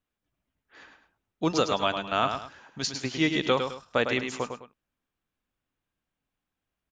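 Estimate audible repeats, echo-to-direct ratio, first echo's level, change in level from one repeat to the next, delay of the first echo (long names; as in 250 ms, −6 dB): 2, −6.5 dB, −7.0 dB, −10.0 dB, 105 ms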